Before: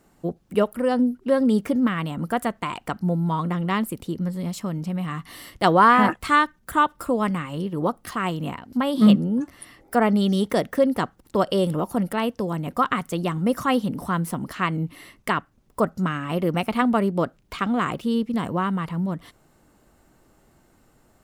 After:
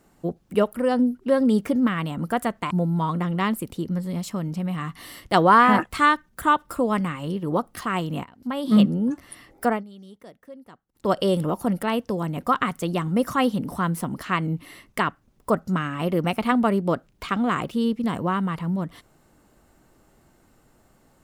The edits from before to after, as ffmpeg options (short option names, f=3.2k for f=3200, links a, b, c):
-filter_complex "[0:a]asplit=5[a][b][c][d][e];[a]atrim=end=2.712[f];[b]atrim=start=3.008:end=8.54,asetpts=PTS-STARTPTS,afade=t=out:st=5.528:d=0.004:c=hsin:silence=0.237137[g];[c]atrim=start=8.54:end=10.14,asetpts=PTS-STARTPTS,afade=t=in:d=0.71:silence=0.237137,afade=t=out:st=1.4:d=0.2:silence=0.0668344[h];[d]atrim=start=10.14:end=11.22,asetpts=PTS-STARTPTS,volume=-23.5dB[i];[e]atrim=start=11.22,asetpts=PTS-STARTPTS,afade=t=in:d=0.2:silence=0.0668344[j];[g][h][i][j]concat=n=4:v=0:a=1[k];[f][k]acrossfade=d=0.004:c1=hsin:c2=hsin"